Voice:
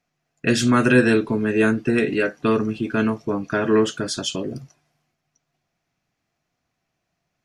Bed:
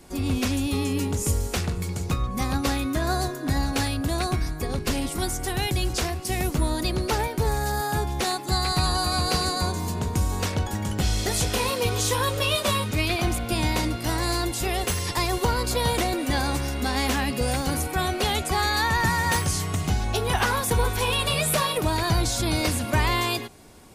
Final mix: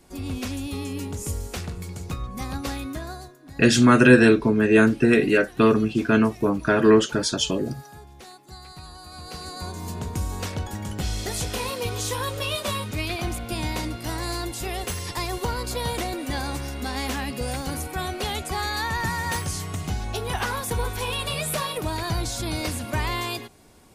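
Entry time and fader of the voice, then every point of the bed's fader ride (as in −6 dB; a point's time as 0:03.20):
3.15 s, +2.0 dB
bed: 0:02.91 −5.5 dB
0:03.38 −19 dB
0:09.01 −19 dB
0:09.90 −4 dB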